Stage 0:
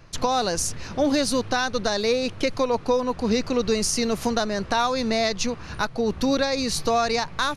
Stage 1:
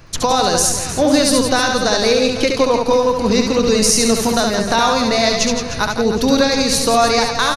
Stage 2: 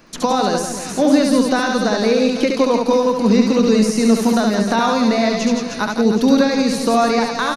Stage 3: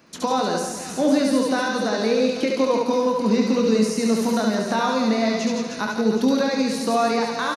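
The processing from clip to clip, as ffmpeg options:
ffmpeg -i in.wav -filter_complex "[0:a]highshelf=frequency=6500:gain=6.5,asplit=2[link_01][link_02];[link_02]aecho=0:1:70|168|305.2|497.3|766.2:0.631|0.398|0.251|0.158|0.1[link_03];[link_01][link_03]amix=inputs=2:normalize=0,volume=6dB" out.wav
ffmpeg -i in.wav -filter_complex "[0:a]acrossover=split=2600[link_01][link_02];[link_02]acompressor=threshold=-24dB:ratio=4:attack=1:release=60[link_03];[link_01][link_03]amix=inputs=2:normalize=0,lowshelf=frequency=150:width_type=q:width=3:gain=-11,volume=-2.5dB" out.wav
ffmpeg -i in.wav -af "highpass=81,aecho=1:1:23|72:0.355|0.422,volume=-6dB" out.wav

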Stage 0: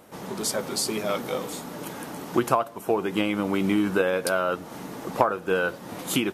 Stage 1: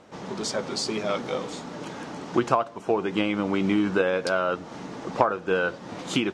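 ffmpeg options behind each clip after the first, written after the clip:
ffmpeg -i in.wav -af "lowpass=frequency=6700:width=0.5412,lowpass=frequency=6700:width=1.3066" out.wav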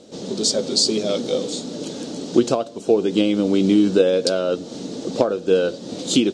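ffmpeg -i in.wav -af "equalizer=frequency=250:width_type=o:width=1:gain=8,equalizer=frequency=500:width_type=o:width=1:gain=9,equalizer=frequency=1000:width_type=o:width=1:gain=-10,equalizer=frequency=2000:width_type=o:width=1:gain=-8,equalizer=frequency=4000:width_type=o:width=1:gain=12,equalizer=frequency=8000:width_type=o:width=1:gain=11" out.wav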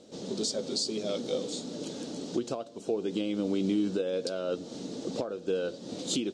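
ffmpeg -i in.wav -af "alimiter=limit=-11.5dB:level=0:latency=1:release=381,volume=-8dB" out.wav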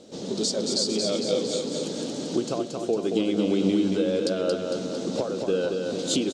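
ffmpeg -i in.wav -af "aecho=1:1:227|454|681|908|1135|1362|1589|1816:0.596|0.34|0.194|0.11|0.0629|0.0358|0.0204|0.0116,volume=5dB" out.wav

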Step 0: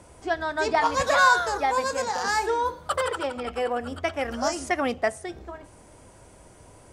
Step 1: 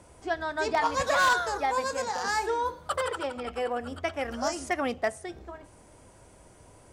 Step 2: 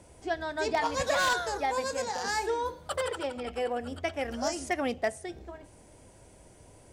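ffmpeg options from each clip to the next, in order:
ffmpeg -i in.wav -af "aeval=exprs='0.224*(abs(mod(val(0)/0.224+3,4)-2)-1)':channel_layout=same,volume=-3.5dB" out.wav
ffmpeg -i in.wav -af "equalizer=frequency=1200:width=1.9:gain=-7" out.wav

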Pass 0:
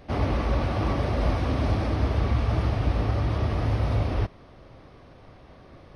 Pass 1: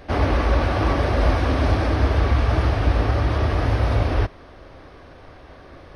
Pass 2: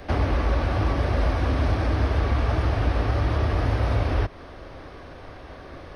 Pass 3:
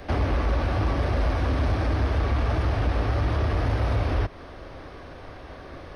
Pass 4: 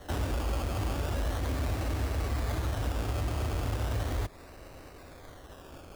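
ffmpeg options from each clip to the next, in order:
ffmpeg -i in.wav -af "equalizer=frequency=125:width_type=o:width=0.33:gain=-10,equalizer=frequency=200:width_type=o:width=0.33:gain=-9,equalizer=frequency=1600:width_type=o:width=0.33:gain=5,volume=6.5dB" out.wav
ffmpeg -i in.wav -filter_complex "[0:a]acrossover=split=200|1100|2200[link_01][link_02][link_03][link_04];[link_01]acompressor=threshold=-23dB:ratio=4[link_05];[link_02]acompressor=threshold=-32dB:ratio=4[link_06];[link_03]acompressor=threshold=-41dB:ratio=4[link_07];[link_04]acompressor=threshold=-46dB:ratio=4[link_08];[link_05][link_06][link_07][link_08]amix=inputs=4:normalize=0,volume=2.5dB" out.wav
ffmpeg -i in.wav -af "asoftclip=type=tanh:threshold=-14.5dB" out.wav
ffmpeg -i in.wav -af "acrusher=samples=18:mix=1:aa=0.000001:lfo=1:lforange=10.8:lforate=0.37,volume=-7.5dB" out.wav

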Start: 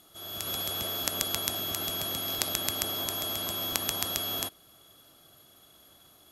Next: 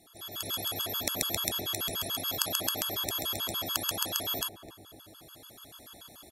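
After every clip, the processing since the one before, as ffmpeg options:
ffmpeg -i in.wav -filter_complex "[0:a]asplit=2[link_01][link_02];[link_02]adelay=258,lowpass=frequency=830:poles=1,volume=-10dB,asplit=2[link_03][link_04];[link_04]adelay=258,lowpass=frequency=830:poles=1,volume=0.55,asplit=2[link_05][link_06];[link_06]adelay=258,lowpass=frequency=830:poles=1,volume=0.55,asplit=2[link_07][link_08];[link_08]adelay=258,lowpass=frequency=830:poles=1,volume=0.55,asplit=2[link_09][link_10];[link_10]adelay=258,lowpass=frequency=830:poles=1,volume=0.55,asplit=2[link_11][link_12];[link_12]adelay=258,lowpass=frequency=830:poles=1,volume=0.55[link_13];[link_01][link_03][link_05][link_07][link_09][link_11][link_13]amix=inputs=7:normalize=0,dynaudnorm=framelen=120:gausssize=13:maxgain=8dB,afftfilt=real='re*gt(sin(2*PI*6.9*pts/sr)*(1-2*mod(floor(b*sr/1024/870),2)),0)':imag='im*gt(sin(2*PI*6.9*pts/sr)*(1-2*mod(floor(b*sr/1024/870),2)),0)':win_size=1024:overlap=0.75,volume=2dB" out.wav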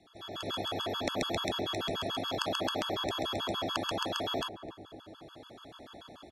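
ffmpeg -i in.wav -filter_complex "[0:a]lowpass=3600,acrossover=split=180|1300[link_01][link_02][link_03];[link_02]dynaudnorm=framelen=130:gausssize=3:maxgain=6dB[link_04];[link_01][link_04][link_03]amix=inputs=3:normalize=0" out.wav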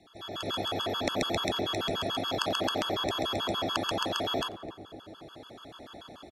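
ffmpeg -i in.wav -filter_complex "[0:a]asplit=3[link_01][link_02][link_03];[link_02]adelay=89,afreqshift=80,volume=-24dB[link_04];[link_03]adelay=178,afreqshift=160,volume=-32.9dB[link_05];[link_01][link_04][link_05]amix=inputs=3:normalize=0,volume=3dB" out.wav

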